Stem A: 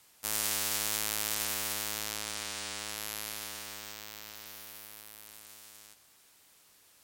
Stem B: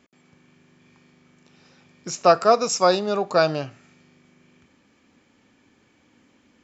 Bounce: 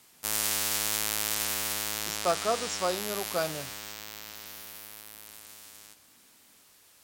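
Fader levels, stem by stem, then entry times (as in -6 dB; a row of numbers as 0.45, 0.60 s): +3.0, -12.0 dB; 0.00, 0.00 s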